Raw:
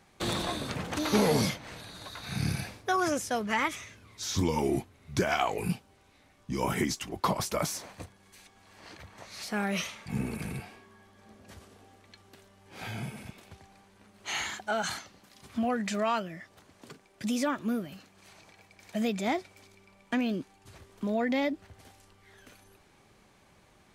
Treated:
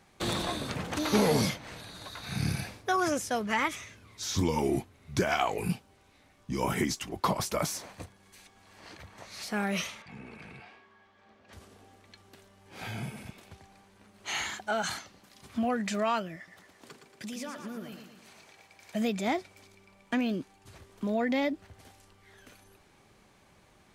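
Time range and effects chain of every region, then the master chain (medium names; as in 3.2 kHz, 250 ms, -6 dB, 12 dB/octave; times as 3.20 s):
10.02–11.53 s: low-pass 3.6 kHz + bass shelf 390 Hz -12 dB + compression 2:1, threshold -46 dBFS
16.36–18.95 s: bass shelf 240 Hz -8.5 dB + compression, threshold -36 dBFS + feedback delay 115 ms, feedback 52%, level -7 dB
whole clip: none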